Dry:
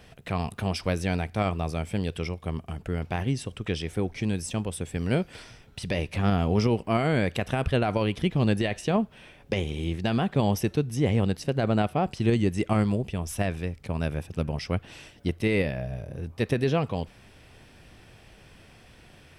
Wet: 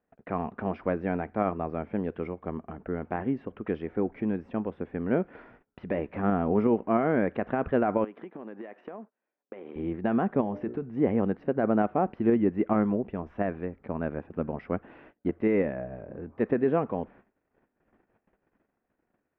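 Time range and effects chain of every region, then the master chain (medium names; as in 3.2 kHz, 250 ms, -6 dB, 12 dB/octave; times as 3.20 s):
8.04–9.76 s: companding laws mixed up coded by A + high-pass 310 Hz + compression 12:1, threshold -36 dBFS
10.41–10.82 s: hum notches 60/120/180/240/300/360/420/480/540/600 Hz + compression 10:1, threshold -25 dBFS
whole clip: gate -48 dBFS, range -26 dB; low-pass 1.7 kHz 24 dB/octave; resonant low shelf 170 Hz -10.5 dB, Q 1.5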